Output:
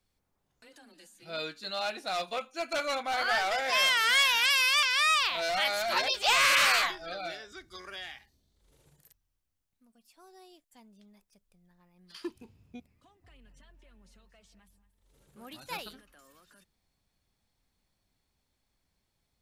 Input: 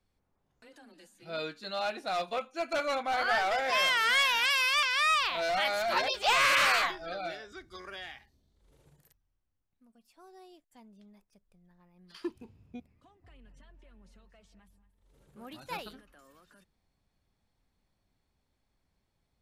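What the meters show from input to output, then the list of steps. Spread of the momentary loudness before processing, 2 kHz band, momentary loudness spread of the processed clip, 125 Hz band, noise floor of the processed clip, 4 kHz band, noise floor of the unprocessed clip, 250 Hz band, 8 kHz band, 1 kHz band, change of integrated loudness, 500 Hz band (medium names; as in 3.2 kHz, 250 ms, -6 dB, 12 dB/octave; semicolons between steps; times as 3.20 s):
18 LU, +1.0 dB, 20 LU, no reading, -80 dBFS, +3.5 dB, -79 dBFS, -2.0 dB, +5.0 dB, -1.0 dB, +2.0 dB, -1.5 dB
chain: treble shelf 2.5 kHz +8 dB; trim -2 dB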